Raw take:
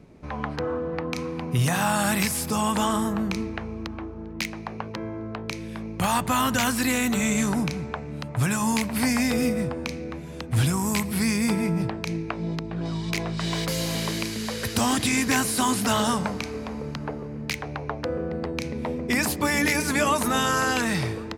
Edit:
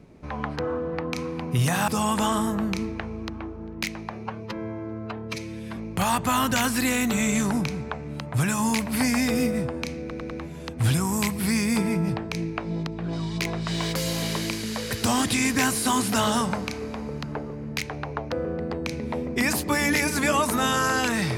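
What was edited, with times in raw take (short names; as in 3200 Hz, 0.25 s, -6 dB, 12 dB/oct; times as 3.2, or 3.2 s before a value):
1.88–2.46 cut
4.68–5.79 stretch 1.5×
10.03 stutter 0.10 s, 4 plays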